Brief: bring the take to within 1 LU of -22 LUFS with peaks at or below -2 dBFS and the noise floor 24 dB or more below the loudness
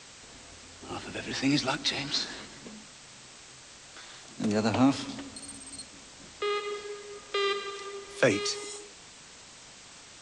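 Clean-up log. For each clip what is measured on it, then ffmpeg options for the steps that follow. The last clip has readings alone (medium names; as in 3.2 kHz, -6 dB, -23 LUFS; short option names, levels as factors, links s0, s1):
noise floor -51 dBFS; noise floor target -55 dBFS; loudness -30.5 LUFS; peak level -11.0 dBFS; loudness target -22.0 LUFS
-> -af "afftdn=nr=6:nf=-51"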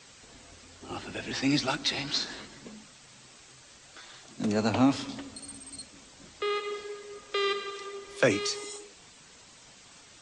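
noise floor -54 dBFS; noise floor target -55 dBFS
-> -af "afftdn=nr=6:nf=-54"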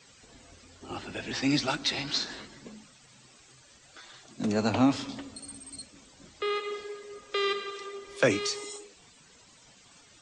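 noise floor -57 dBFS; loudness -30.5 LUFS; peak level -11.0 dBFS; loudness target -22.0 LUFS
-> -af "volume=2.66"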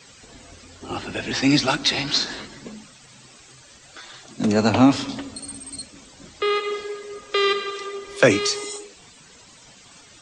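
loudness -22.0 LUFS; peak level -2.5 dBFS; noise floor -49 dBFS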